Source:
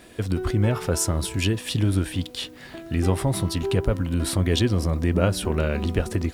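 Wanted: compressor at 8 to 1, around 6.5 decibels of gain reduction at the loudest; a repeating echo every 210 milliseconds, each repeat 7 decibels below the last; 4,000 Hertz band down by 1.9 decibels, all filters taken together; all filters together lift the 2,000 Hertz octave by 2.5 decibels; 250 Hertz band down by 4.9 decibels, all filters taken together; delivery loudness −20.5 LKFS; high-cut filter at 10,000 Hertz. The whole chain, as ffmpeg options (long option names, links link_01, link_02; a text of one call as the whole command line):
ffmpeg -i in.wav -af "lowpass=10000,equalizer=frequency=250:width_type=o:gain=-7,equalizer=frequency=2000:width_type=o:gain=4.5,equalizer=frequency=4000:width_type=o:gain=-4,acompressor=threshold=-24dB:ratio=8,aecho=1:1:210|420|630|840|1050:0.447|0.201|0.0905|0.0407|0.0183,volume=8.5dB" out.wav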